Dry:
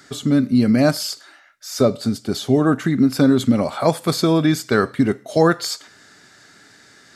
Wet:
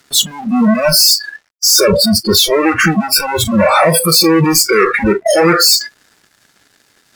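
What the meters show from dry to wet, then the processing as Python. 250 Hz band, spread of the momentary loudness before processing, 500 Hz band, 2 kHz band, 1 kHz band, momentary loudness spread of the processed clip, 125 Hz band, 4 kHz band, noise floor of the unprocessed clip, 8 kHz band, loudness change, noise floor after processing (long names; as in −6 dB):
+2.0 dB, 10 LU, +7.0 dB, +12.0 dB, +9.5 dB, 6 LU, +2.0 dB, +17.0 dB, −50 dBFS, +18.5 dB, +8.0 dB, −56 dBFS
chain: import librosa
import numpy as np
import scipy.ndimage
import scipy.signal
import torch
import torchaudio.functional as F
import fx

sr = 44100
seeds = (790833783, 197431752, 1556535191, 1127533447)

y = fx.fuzz(x, sr, gain_db=40.0, gate_db=-47.0)
y = fx.noise_reduce_blind(y, sr, reduce_db=28)
y = y * librosa.db_to_amplitude(6.5)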